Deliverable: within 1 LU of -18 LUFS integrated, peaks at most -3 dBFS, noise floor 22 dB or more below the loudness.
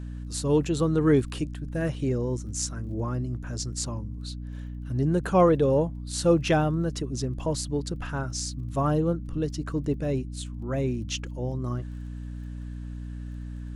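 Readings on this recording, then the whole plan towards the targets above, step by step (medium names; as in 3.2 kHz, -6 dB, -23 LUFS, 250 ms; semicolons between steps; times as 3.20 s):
tick rate 19 per s; hum 60 Hz; highest harmonic 300 Hz; hum level -33 dBFS; loudness -27.5 LUFS; peak level -9.5 dBFS; loudness target -18.0 LUFS
-> de-click; hum notches 60/120/180/240/300 Hz; trim +9.5 dB; peak limiter -3 dBFS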